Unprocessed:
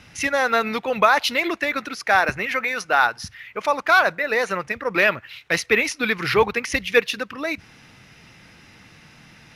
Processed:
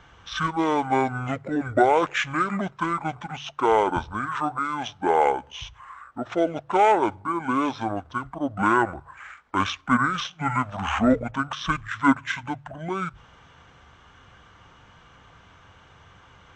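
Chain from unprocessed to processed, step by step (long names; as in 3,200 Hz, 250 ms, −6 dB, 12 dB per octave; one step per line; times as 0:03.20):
mains-hum notches 50/100/150/200/250 Hz
wrong playback speed 78 rpm record played at 45 rpm
level −3 dB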